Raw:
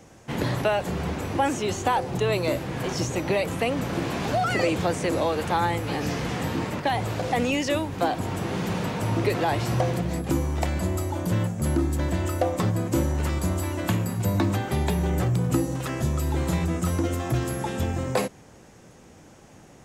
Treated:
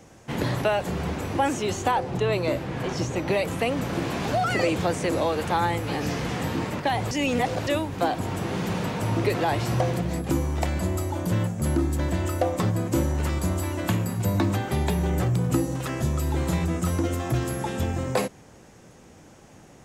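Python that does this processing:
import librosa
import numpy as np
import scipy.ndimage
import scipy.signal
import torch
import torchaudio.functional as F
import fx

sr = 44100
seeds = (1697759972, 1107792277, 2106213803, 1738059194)

y = fx.high_shelf(x, sr, hz=6500.0, db=-9.5, at=(1.91, 3.28))
y = fx.edit(y, sr, fx.reverse_span(start_s=7.11, length_s=0.56), tone=tone)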